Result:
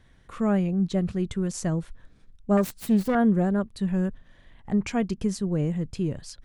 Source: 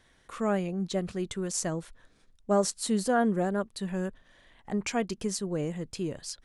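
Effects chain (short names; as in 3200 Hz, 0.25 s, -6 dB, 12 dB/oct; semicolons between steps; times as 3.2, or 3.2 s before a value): 2.57–3.15 self-modulated delay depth 0.25 ms; tone controls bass +11 dB, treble -5 dB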